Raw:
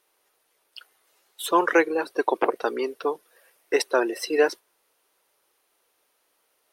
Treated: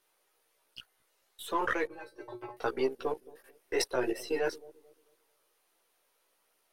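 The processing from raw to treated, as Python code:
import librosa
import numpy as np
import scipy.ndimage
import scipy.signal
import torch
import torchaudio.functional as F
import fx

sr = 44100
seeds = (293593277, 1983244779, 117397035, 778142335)

y = np.where(x < 0.0, 10.0 ** (-3.0 / 20.0) * x, x)
y = fx.level_steps(y, sr, step_db=15)
y = fx.chorus_voices(y, sr, voices=2, hz=0.69, base_ms=16, depth_ms=1.2, mix_pct=45)
y = fx.comb_fb(y, sr, f0_hz=120.0, decay_s=0.17, harmonics='odd', damping=0.0, mix_pct=100, at=(1.87, 2.57))
y = fx.echo_bbd(y, sr, ms=219, stages=1024, feedback_pct=32, wet_db=-20)
y = y * 10.0 ** (4.0 / 20.0)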